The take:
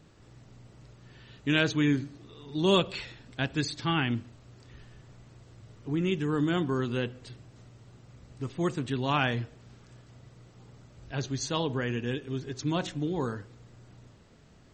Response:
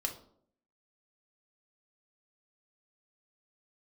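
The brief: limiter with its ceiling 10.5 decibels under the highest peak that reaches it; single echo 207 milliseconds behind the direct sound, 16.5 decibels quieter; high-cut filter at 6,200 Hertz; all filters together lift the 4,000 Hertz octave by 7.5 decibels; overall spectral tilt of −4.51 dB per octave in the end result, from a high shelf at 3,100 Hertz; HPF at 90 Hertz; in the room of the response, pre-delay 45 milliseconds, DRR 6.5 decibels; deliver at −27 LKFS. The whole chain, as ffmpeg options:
-filter_complex "[0:a]highpass=90,lowpass=6200,highshelf=frequency=3100:gain=6,equalizer=frequency=4000:width_type=o:gain=6,alimiter=limit=-17dB:level=0:latency=1,aecho=1:1:207:0.15,asplit=2[link_01][link_02];[1:a]atrim=start_sample=2205,adelay=45[link_03];[link_02][link_03]afir=irnorm=-1:irlink=0,volume=-8.5dB[link_04];[link_01][link_04]amix=inputs=2:normalize=0,volume=3dB"

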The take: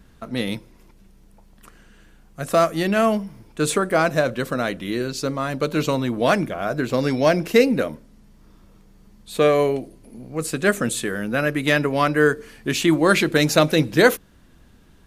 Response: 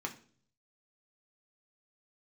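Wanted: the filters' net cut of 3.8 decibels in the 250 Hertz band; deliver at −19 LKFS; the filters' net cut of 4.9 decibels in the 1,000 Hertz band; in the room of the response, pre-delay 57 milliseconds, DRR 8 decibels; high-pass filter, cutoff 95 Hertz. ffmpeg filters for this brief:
-filter_complex "[0:a]highpass=95,equalizer=frequency=250:width_type=o:gain=-4.5,equalizer=frequency=1000:width_type=o:gain=-7,asplit=2[link_01][link_02];[1:a]atrim=start_sample=2205,adelay=57[link_03];[link_02][link_03]afir=irnorm=-1:irlink=0,volume=-10dB[link_04];[link_01][link_04]amix=inputs=2:normalize=0,volume=3.5dB"

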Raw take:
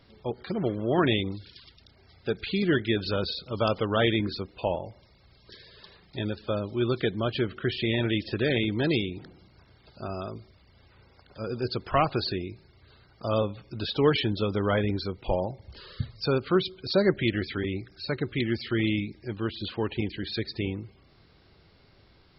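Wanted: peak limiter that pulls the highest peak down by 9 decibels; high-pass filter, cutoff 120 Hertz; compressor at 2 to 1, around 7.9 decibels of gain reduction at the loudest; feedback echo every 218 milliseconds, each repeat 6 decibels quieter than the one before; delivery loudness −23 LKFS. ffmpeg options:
ffmpeg -i in.wav -af "highpass=120,acompressor=threshold=-32dB:ratio=2,alimiter=limit=-24dB:level=0:latency=1,aecho=1:1:218|436|654|872|1090|1308:0.501|0.251|0.125|0.0626|0.0313|0.0157,volume=12.5dB" out.wav

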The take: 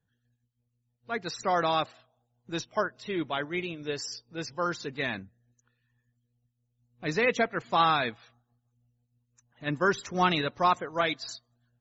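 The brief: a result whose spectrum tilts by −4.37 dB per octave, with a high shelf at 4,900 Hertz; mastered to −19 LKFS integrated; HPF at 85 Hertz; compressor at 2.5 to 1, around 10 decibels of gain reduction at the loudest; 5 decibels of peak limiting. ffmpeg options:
ffmpeg -i in.wav -af "highpass=85,highshelf=frequency=4900:gain=-5.5,acompressor=threshold=-35dB:ratio=2.5,volume=20dB,alimiter=limit=-6dB:level=0:latency=1" out.wav

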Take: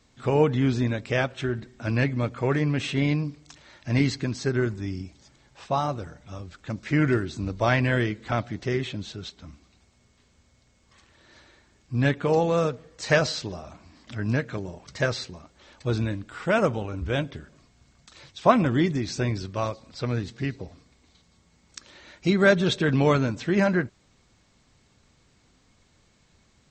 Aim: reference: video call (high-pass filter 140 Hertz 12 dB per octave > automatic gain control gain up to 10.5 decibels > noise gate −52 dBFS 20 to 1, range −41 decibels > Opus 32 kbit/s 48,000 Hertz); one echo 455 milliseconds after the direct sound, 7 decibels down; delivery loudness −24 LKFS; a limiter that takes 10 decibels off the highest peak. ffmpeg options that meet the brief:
ffmpeg -i in.wav -af "alimiter=limit=-15dB:level=0:latency=1,highpass=140,aecho=1:1:455:0.447,dynaudnorm=maxgain=10.5dB,agate=range=-41dB:threshold=-52dB:ratio=20,volume=-0.5dB" -ar 48000 -c:a libopus -b:a 32k out.opus

